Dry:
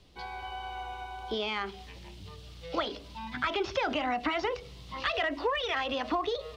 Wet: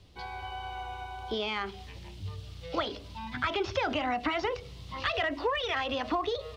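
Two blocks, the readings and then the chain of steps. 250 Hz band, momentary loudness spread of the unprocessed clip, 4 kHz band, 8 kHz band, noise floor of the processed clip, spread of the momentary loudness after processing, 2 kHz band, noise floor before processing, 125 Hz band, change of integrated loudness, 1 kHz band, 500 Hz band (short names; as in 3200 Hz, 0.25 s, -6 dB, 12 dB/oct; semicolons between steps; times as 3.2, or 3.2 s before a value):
+0.5 dB, 16 LU, 0.0 dB, 0.0 dB, -46 dBFS, 12 LU, 0.0 dB, -48 dBFS, +5.5 dB, 0.0 dB, 0.0 dB, 0.0 dB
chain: bell 94 Hz +12.5 dB 0.5 oct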